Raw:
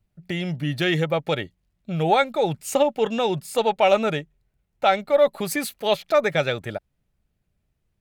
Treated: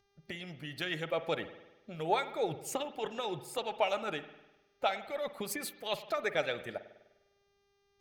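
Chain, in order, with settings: mains buzz 400 Hz, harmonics 16, -56 dBFS -4 dB/octave; harmonic-percussive split harmonic -12 dB; spring tank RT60 1 s, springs 50 ms, chirp 75 ms, DRR 11.5 dB; trim -8.5 dB

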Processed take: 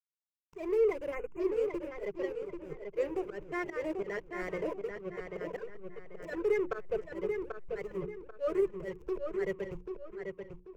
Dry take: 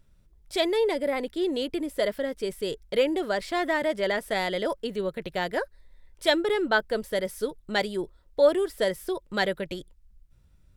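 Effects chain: coarse spectral quantiser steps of 30 dB; static phaser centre 890 Hz, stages 6; hysteresis with a dead band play -31.5 dBFS; tone controls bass +5 dB, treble -9 dB; slow attack 138 ms; hum notches 60/120/180/240/300/360 Hz; filtered feedback delay 788 ms, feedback 33%, low-pass 4.8 kHz, level -5.5 dB; time-frequency box 1.14–1.40 s, 3–6.3 kHz -29 dB; rippled EQ curve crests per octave 0.75, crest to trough 9 dB; trim -4 dB

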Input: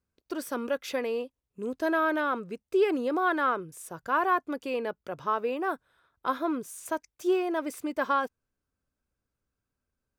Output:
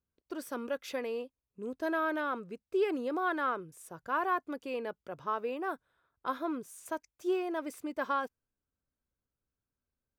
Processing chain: tape noise reduction on one side only decoder only; trim -5.5 dB

